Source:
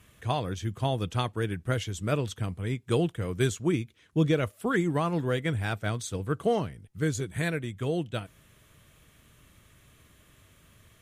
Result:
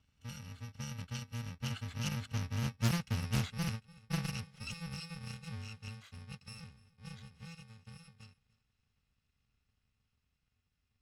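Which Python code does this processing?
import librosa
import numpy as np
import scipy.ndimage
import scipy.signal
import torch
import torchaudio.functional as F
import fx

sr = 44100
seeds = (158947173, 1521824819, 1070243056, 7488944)

p1 = fx.bit_reversed(x, sr, seeds[0], block=128)
p2 = fx.doppler_pass(p1, sr, speed_mps=11, closest_m=7.8, pass_at_s=2.92)
p3 = scipy.signal.sosfilt(scipy.signal.butter(2, 3800.0, 'lowpass', fs=sr, output='sos'), p2)
p4 = fx.peak_eq(p3, sr, hz=540.0, db=-10.5, octaves=1.6)
p5 = p4 + fx.echo_single(p4, sr, ms=294, db=-22.5, dry=0)
p6 = fx.doppler_dist(p5, sr, depth_ms=0.46)
y = p6 * librosa.db_to_amplitude(1.5)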